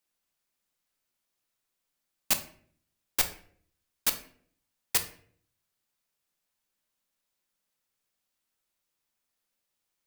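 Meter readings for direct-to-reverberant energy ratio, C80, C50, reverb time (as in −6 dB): 6.5 dB, 15.5 dB, 11.5 dB, 0.55 s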